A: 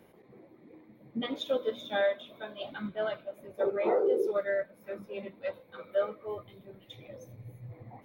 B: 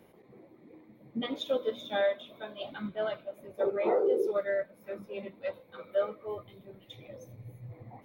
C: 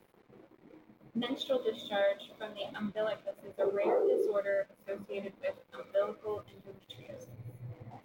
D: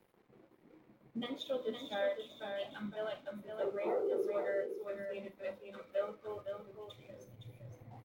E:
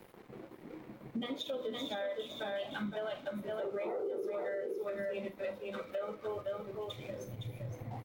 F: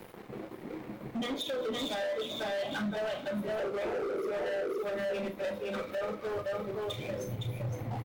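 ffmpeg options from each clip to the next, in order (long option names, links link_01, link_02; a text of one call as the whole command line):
ffmpeg -i in.wav -af "equalizer=frequency=1600:width=3.7:gain=-2.5" out.wav
ffmpeg -i in.wav -filter_complex "[0:a]asplit=2[link_01][link_02];[link_02]alimiter=level_in=5.5dB:limit=-24dB:level=0:latency=1,volume=-5.5dB,volume=-2dB[link_03];[link_01][link_03]amix=inputs=2:normalize=0,aeval=exprs='sgn(val(0))*max(abs(val(0))-0.00168,0)':channel_layout=same,volume=-4dB" out.wav
ffmpeg -i in.wav -filter_complex "[0:a]asplit=2[link_01][link_02];[link_02]adelay=44,volume=-13.5dB[link_03];[link_01][link_03]amix=inputs=2:normalize=0,asplit=2[link_04][link_05];[link_05]aecho=0:1:513:0.473[link_06];[link_04][link_06]amix=inputs=2:normalize=0,volume=-6dB" out.wav
ffmpeg -i in.wav -af "alimiter=level_in=11.5dB:limit=-24dB:level=0:latency=1:release=99,volume=-11.5dB,acompressor=threshold=-55dB:ratio=2,volume=13.5dB" out.wav
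ffmpeg -i in.wav -filter_complex "[0:a]asoftclip=type=hard:threshold=-39dB,asplit=2[link_01][link_02];[link_02]adelay=34,volume=-12dB[link_03];[link_01][link_03]amix=inputs=2:normalize=0,volume=7.5dB" out.wav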